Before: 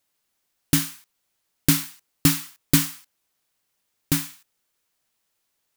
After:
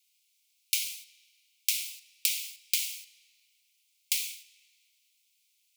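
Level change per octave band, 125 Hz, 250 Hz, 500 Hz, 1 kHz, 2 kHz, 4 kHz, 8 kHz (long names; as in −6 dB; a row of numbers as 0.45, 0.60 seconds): below −40 dB, below −40 dB, below −40 dB, below −40 dB, −6.5 dB, −3.0 dB, −5.0 dB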